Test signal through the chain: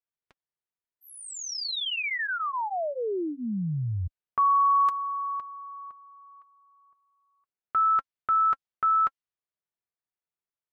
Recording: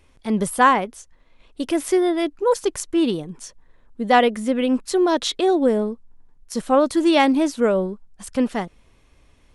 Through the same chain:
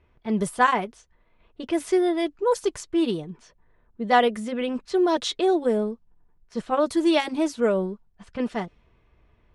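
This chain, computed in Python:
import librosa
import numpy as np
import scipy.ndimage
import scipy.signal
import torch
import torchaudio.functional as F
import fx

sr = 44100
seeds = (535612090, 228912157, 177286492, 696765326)

y = fx.notch_comb(x, sr, f0_hz=270.0)
y = fx.env_lowpass(y, sr, base_hz=2100.0, full_db=-16.5)
y = F.gain(torch.from_numpy(y), -2.5).numpy()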